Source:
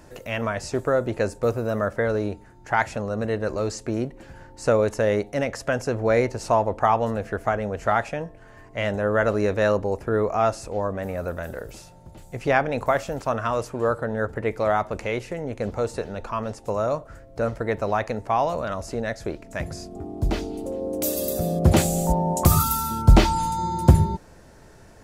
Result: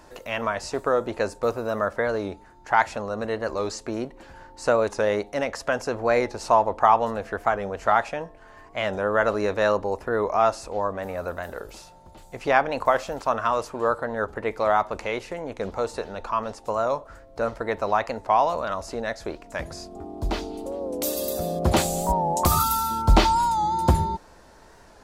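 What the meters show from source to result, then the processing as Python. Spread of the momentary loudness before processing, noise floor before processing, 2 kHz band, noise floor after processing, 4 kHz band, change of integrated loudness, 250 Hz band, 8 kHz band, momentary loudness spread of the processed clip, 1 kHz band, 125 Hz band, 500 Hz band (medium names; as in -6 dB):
12 LU, -48 dBFS, +0.5 dB, -50 dBFS, +2.0 dB, -0.5 dB, -4.5 dB, -1.5 dB, 12 LU, +3.0 dB, -7.0 dB, -1.0 dB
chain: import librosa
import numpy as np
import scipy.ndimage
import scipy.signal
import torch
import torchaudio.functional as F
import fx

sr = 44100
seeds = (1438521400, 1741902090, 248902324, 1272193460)

y = fx.graphic_eq(x, sr, hz=(125, 1000, 4000), db=(-8, 7, 5))
y = fx.record_warp(y, sr, rpm=45.0, depth_cents=100.0)
y = y * librosa.db_to_amplitude(-2.5)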